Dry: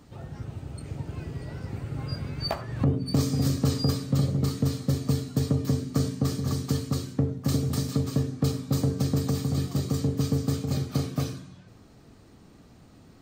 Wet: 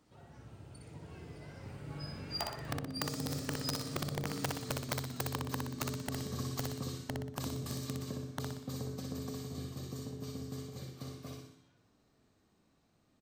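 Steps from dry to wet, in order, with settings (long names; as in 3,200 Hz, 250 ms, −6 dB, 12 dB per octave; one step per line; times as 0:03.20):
source passing by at 0:04.57, 14 m/s, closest 4.9 metres
downward compressor 16 to 1, threshold −41 dBFS, peak gain reduction 21.5 dB
wrap-around overflow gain 35 dB
low-shelf EQ 230 Hz −8 dB
on a send: repeating echo 61 ms, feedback 46%, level −4 dB
on the sum: level +10 dB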